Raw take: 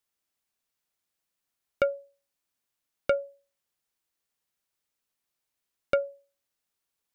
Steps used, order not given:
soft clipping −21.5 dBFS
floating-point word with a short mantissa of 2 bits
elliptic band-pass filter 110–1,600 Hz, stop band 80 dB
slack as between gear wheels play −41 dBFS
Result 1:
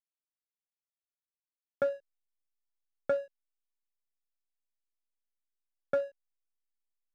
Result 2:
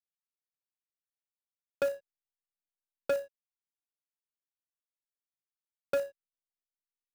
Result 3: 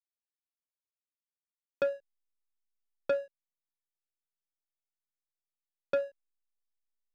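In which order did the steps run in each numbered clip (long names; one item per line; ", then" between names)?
soft clipping, then floating-point word with a short mantissa, then elliptic band-pass filter, then slack as between gear wheels
elliptic band-pass filter, then soft clipping, then slack as between gear wheels, then floating-point word with a short mantissa
floating-point word with a short mantissa, then elliptic band-pass filter, then soft clipping, then slack as between gear wheels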